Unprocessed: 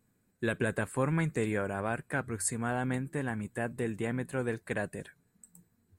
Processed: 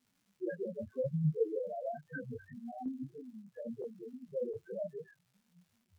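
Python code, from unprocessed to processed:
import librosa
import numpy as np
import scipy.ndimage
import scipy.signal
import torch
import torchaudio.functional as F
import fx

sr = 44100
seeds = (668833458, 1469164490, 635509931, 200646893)

y = scipy.signal.sosfilt(scipy.signal.butter(2, 1600.0, 'lowpass', fs=sr, output='sos'), x)
y = fx.low_shelf(y, sr, hz=170.0, db=-7.5)
y = fx.spec_topn(y, sr, count=1)
y = fx.chopper(y, sr, hz=1.4, depth_pct=65, duty_pct=35, at=(2.51, 4.54), fade=0.02)
y = fx.dmg_crackle(y, sr, seeds[0], per_s=230.0, level_db=-67.0)
y = fx.detune_double(y, sr, cents=27)
y = F.gain(torch.from_numpy(y), 11.0).numpy()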